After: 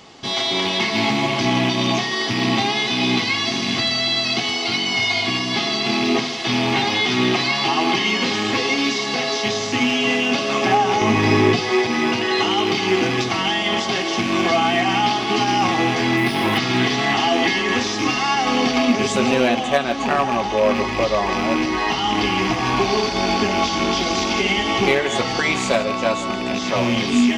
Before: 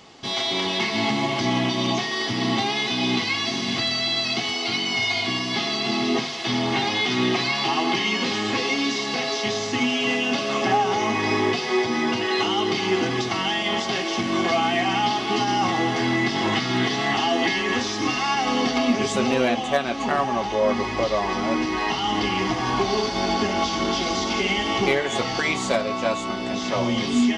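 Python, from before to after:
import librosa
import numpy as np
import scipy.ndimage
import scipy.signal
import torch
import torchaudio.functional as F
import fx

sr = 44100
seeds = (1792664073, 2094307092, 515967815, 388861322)

p1 = fx.rattle_buzz(x, sr, strikes_db=-30.0, level_db=-20.0)
p2 = fx.low_shelf(p1, sr, hz=210.0, db=11.5, at=(11.01, 11.61))
p3 = p2 + fx.echo_single(p2, sr, ms=159, db=-16.5, dry=0)
p4 = fx.resample_linear(p3, sr, factor=3, at=(16.17, 16.58))
y = p4 * librosa.db_to_amplitude(3.5)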